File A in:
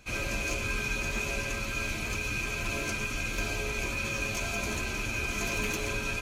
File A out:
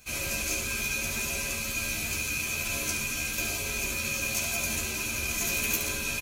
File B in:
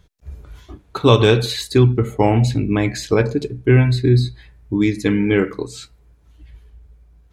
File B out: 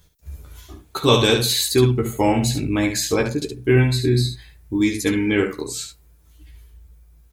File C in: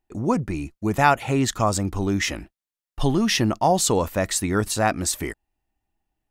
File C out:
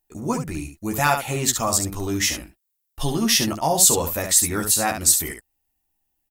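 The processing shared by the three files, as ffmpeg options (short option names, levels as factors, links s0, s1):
-filter_complex "[0:a]aemphasis=mode=production:type=75fm,asplit=2[s0][s1];[s1]aecho=0:1:13|71:0.631|0.473[s2];[s0][s2]amix=inputs=2:normalize=0,volume=0.631"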